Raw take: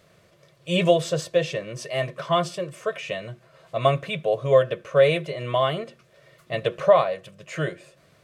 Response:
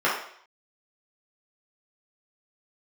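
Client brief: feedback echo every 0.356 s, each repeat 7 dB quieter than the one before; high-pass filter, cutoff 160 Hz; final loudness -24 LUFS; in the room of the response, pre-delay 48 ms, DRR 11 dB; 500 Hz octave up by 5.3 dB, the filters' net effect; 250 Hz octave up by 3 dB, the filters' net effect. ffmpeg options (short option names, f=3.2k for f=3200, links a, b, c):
-filter_complex "[0:a]highpass=160,equalizer=f=250:t=o:g=6,equalizer=f=500:t=o:g=5,aecho=1:1:356|712|1068|1424|1780:0.447|0.201|0.0905|0.0407|0.0183,asplit=2[a][b];[1:a]atrim=start_sample=2205,adelay=48[c];[b][c]afir=irnorm=-1:irlink=0,volume=-28dB[d];[a][d]amix=inputs=2:normalize=0,volume=-5.5dB"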